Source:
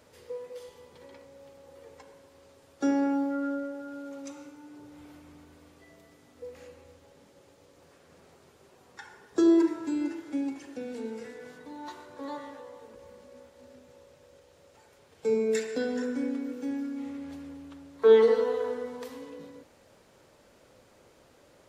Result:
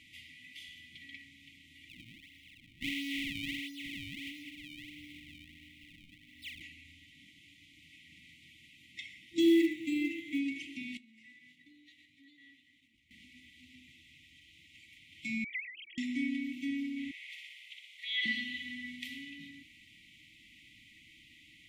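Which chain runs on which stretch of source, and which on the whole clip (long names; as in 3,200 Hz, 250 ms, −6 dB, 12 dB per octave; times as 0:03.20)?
0:01.89–0:06.62: phase distortion by the signal itself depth 0.48 ms + downward compressor 2 to 1, threshold −41 dBFS + sample-and-hold swept by an LFO 37×, swing 160% 1.5 Hz
0:09.39–0:10.39: parametric band 5,000 Hz −7.5 dB 0.38 octaves + floating-point word with a short mantissa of 4 bits
0:10.97–0:13.11: downward expander −41 dBFS + downward compressor 10 to 1, threshold −53 dBFS
0:15.44–0:15.98: three sine waves on the formant tracks + spectral tilt +2.5 dB per octave
0:17.11–0:18.26: Butterworth high-pass 1,400 Hz + flutter between parallel walls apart 10.4 metres, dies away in 0.92 s + downward compressor 2.5 to 1, threshold −41 dBFS
whole clip: flat-topped bell 2,200 Hz +15.5 dB; brick-wall band-stop 340–1,900 Hz; level −3 dB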